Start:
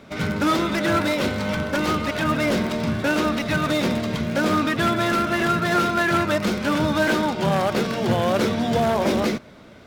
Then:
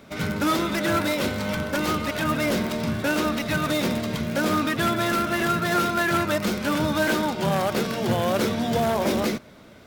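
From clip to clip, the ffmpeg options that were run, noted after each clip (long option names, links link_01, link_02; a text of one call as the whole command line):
ffmpeg -i in.wav -af "highshelf=frequency=9600:gain=11.5,volume=-2.5dB" out.wav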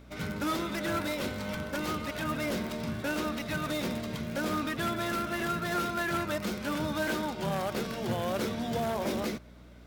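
ffmpeg -i in.wav -af "aeval=exprs='val(0)+0.00708*(sin(2*PI*60*n/s)+sin(2*PI*2*60*n/s)/2+sin(2*PI*3*60*n/s)/3+sin(2*PI*4*60*n/s)/4+sin(2*PI*5*60*n/s)/5)':channel_layout=same,volume=-8.5dB" out.wav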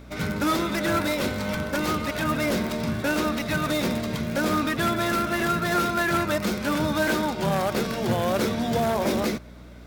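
ffmpeg -i in.wav -af "equalizer=frequency=3000:width_type=o:width=0.21:gain=-3,volume=7.5dB" out.wav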